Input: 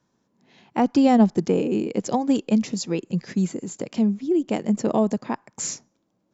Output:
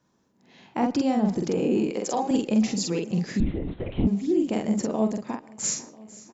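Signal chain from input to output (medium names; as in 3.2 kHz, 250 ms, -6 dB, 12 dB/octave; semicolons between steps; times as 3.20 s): 1.86–2.31 s: high-pass 390 Hz 12 dB/octave; peak limiter -17.5 dBFS, peak gain reduction 11.5 dB; doubling 46 ms -2.5 dB; feedback delay 496 ms, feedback 56%, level -20.5 dB; on a send at -19 dB: reverberation RT60 0.30 s, pre-delay 107 ms; 3.40–4.07 s: on the sum: LPC vocoder at 8 kHz whisper; 4.85–5.64 s: upward expansion 1.5:1, over -34 dBFS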